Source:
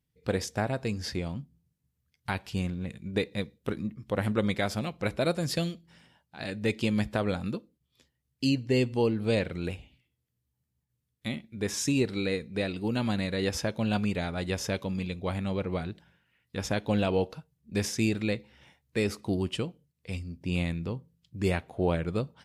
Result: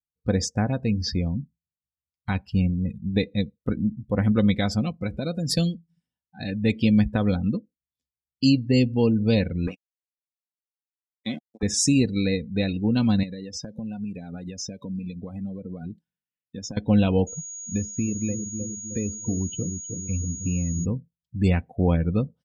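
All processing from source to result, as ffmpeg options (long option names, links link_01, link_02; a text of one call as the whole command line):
ffmpeg -i in.wav -filter_complex "[0:a]asettb=1/sr,asplit=3[link_01][link_02][link_03];[link_01]atrim=end=4.914[link_04];[link_02]atrim=start=4.91:end=5.5,asetpts=PTS-STARTPTS,afade=type=in:duration=0.004:curve=qsin,afade=type=out:start_time=0.586:duration=0.004:curve=qsin,acompressor=threshold=-32dB:ratio=2:attack=3.2:release=140:knee=1:detection=peak,highpass=56[link_05];[link_03]atrim=start=5.496[link_06];[link_04][link_05]acrossfade=duration=0.004:curve1=hsin:curve2=qsin[link_07];[link_07][link_06]acrossfade=duration=0.004:curve1=qsin:curve2=hsin,asettb=1/sr,asplit=3[link_08][link_09][link_10];[link_08]atrim=end=9.674[link_11];[link_09]atrim=start=9.67:end=11.63,asetpts=PTS-STARTPTS,afade=type=in:duration=0.004:curve=qsin,afade=type=out:start_time=1.956:duration=0.004:curve=qsin,aeval=exprs='val(0)*gte(abs(val(0)),0.0211)':channel_layout=same,highpass=220,lowpass=7000[link_12];[link_10]atrim=start=11.626[link_13];[link_11][link_12]acrossfade=duration=0.004:curve1=hsin:curve2=qsin[link_14];[link_14][link_13]acrossfade=duration=0.004:curve1=qsin:curve2=hsin,asettb=1/sr,asplit=3[link_15][link_16][link_17];[link_15]atrim=end=13.234[link_18];[link_16]atrim=start=13.23:end=16.77,asetpts=PTS-STARTPTS,afade=type=in:duration=0.004:curve=qsin,afade=type=out:start_time=3.536:duration=0.004:curve=qsin,highpass=140,highshelf=frequency=2900:gain=4,acompressor=threshold=-35dB:ratio=16:attack=3.2:release=140:knee=1:detection=peak[link_19];[link_17]atrim=start=16.766[link_20];[link_18][link_19]acrossfade=duration=0.004:curve1=hsin:curve2=qsin[link_21];[link_21][link_20]acrossfade=duration=0.004:curve1=qsin:curve2=hsin,asettb=1/sr,asplit=3[link_22][link_23][link_24];[link_22]atrim=end=17.274[link_25];[link_23]atrim=start=17.27:end=20.85,asetpts=PTS-STARTPTS,afade=type=in:duration=0.004:curve=qsin,afade=type=out:start_time=3.576:duration=0.004:curve=qsin,asplit=2[link_26][link_27];[link_27]adelay=309,lowpass=frequency=1100:poles=1,volume=-10.5dB,asplit=2[link_28][link_29];[link_29]adelay=309,lowpass=frequency=1100:poles=1,volume=0.5,asplit=2[link_30][link_31];[link_31]adelay=309,lowpass=frequency=1100:poles=1,volume=0.5,asplit=2[link_32][link_33];[link_33]adelay=309,lowpass=frequency=1100:poles=1,volume=0.5,asplit=2[link_34][link_35];[link_35]adelay=309,lowpass=frequency=1100:poles=1,volume=0.5[link_36];[link_26][link_28][link_30][link_32][link_34][link_36]amix=inputs=6:normalize=0,atrim=end_sample=157878,acrossover=split=560|3100[link_37][link_38][link_39];[link_37]acompressor=threshold=-32dB:ratio=4[link_40];[link_38]acompressor=threshold=-47dB:ratio=4[link_41];[link_39]acompressor=threshold=-53dB:ratio=4[link_42];[link_40][link_41][link_42]amix=inputs=3:normalize=0,aeval=exprs='val(0)+0.00562*sin(2*PI*6700*n/s)':channel_layout=same[link_43];[link_24]atrim=start=20.846[link_44];[link_25][link_43]acrossfade=duration=0.004:curve1=hsin:curve2=qsin[link_45];[link_45][link_44]acrossfade=duration=0.004:curve1=qsin:curve2=hsin,afftdn=noise_reduction=34:noise_floor=-39,bass=frequency=250:gain=12,treble=frequency=4000:gain=12,aecho=1:1:4:0.38" out.wav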